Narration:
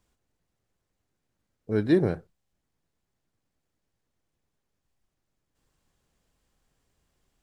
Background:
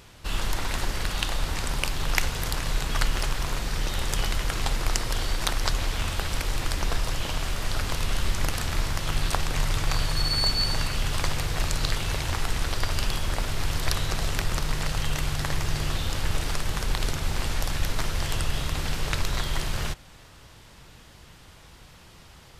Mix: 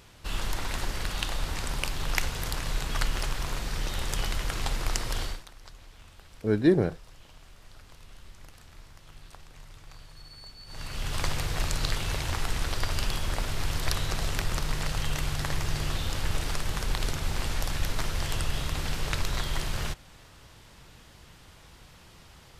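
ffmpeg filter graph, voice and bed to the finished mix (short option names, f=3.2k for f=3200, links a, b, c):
-filter_complex "[0:a]adelay=4750,volume=0.5dB[a];[1:a]volume=17.5dB,afade=t=out:st=5.22:d=0.21:silence=0.1,afade=t=in:st=10.66:d=0.58:silence=0.0891251[b];[a][b]amix=inputs=2:normalize=0"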